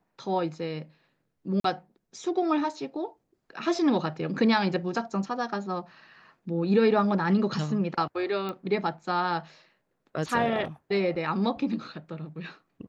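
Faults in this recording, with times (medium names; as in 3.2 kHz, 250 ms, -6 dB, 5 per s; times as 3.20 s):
1.60–1.64 s: dropout 43 ms
8.49 s: pop -21 dBFS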